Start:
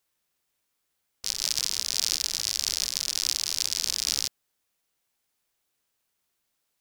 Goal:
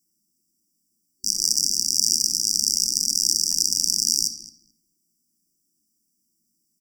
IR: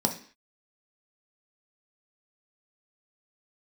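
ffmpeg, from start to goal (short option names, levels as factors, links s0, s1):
-filter_complex "[0:a]asplit=2[s0][s1];[1:a]atrim=start_sample=2205[s2];[s1][s2]afir=irnorm=-1:irlink=0,volume=0.473[s3];[s0][s3]amix=inputs=2:normalize=0,afftfilt=real='re*(1-between(b*sr/4096,370,4600))':imag='im*(1-between(b*sr/4096,370,4600))':win_size=4096:overlap=0.75,asplit=2[s4][s5];[s5]adelay=217,lowpass=f=2400:p=1,volume=0.266,asplit=2[s6][s7];[s7]adelay=217,lowpass=f=2400:p=1,volume=0.21,asplit=2[s8][s9];[s9]adelay=217,lowpass=f=2400:p=1,volume=0.21[s10];[s6][s8][s10]amix=inputs=3:normalize=0[s11];[s4][s11]amix=inputs=2:normalize=0,volume=1.19"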